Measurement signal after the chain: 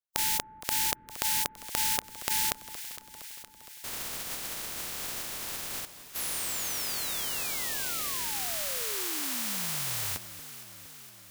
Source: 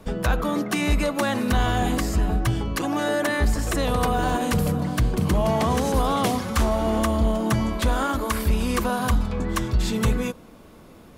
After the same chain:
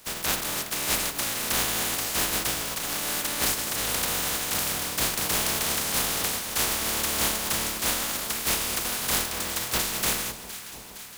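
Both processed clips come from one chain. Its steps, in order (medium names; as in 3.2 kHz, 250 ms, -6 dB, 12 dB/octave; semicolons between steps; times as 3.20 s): spectral contrast reduction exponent 0.15; on a send: echo whose repeats swap between lows and highs 232 ms, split 1.1 kHz, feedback 81%, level -12 dB; on the sum: trim -5.5 dB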